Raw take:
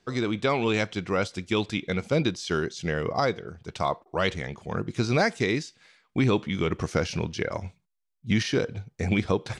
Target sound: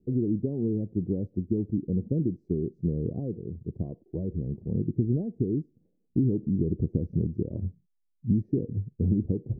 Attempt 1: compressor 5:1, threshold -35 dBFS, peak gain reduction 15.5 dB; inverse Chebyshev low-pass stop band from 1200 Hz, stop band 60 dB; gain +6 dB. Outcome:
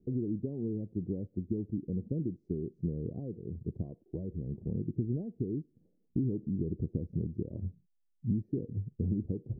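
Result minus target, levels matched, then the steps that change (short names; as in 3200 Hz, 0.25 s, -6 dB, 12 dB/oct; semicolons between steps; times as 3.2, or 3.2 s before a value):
compressor: peak gain reduction +7 dB
change: compressor 5:1, threshold -26 dBFS, peak gain reduction 8 dB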